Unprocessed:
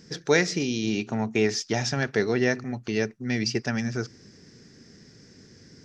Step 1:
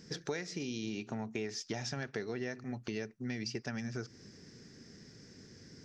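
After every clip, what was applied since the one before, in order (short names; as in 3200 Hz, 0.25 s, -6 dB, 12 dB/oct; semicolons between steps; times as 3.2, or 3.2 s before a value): compressor 6:1, threshold -32 dBFS, peak gain reduction 16 dB; gain -3.5 dB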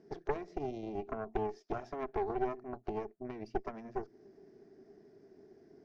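double band-pass 510 Hz, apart 0.71 oct; added harmonics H 4 -7 dB, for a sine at -32 dBFS; gain +8 dB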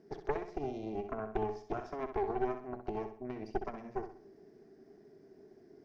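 flutter echo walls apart 11 m, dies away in 0.45 s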